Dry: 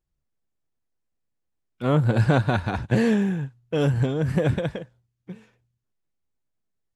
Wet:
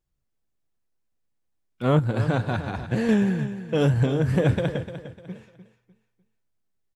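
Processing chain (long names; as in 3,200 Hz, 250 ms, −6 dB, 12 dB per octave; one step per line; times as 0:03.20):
flanger 2 Hz, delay 8.1 ms, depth 2.4 ms, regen −86%
0:01.99–0:03.09: tuned comb filter 85 Hz, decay 1.7 s, mix 50%
repeating echo 300 ms, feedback 32%, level −12 dB
level +5.5 dB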